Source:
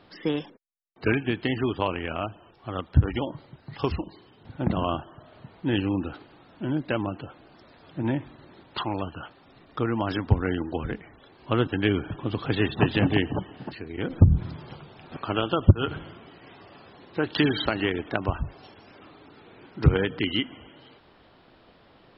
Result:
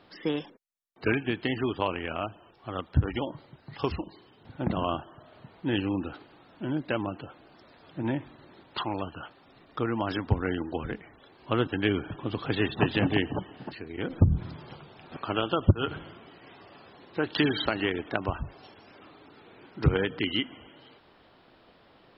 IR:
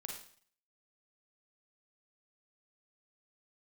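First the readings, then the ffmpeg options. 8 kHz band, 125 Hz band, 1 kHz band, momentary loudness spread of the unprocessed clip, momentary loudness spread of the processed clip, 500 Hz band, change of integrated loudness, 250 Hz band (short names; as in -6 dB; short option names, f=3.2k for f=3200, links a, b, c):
n/a, -5.0 dB, -1.5 dB, 18 LU, 17 LU, -2.0 dB, -3.0 dB, -3.0 dB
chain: -af "lowshelf=f=180:g=-4.5,volume=-1.5dB"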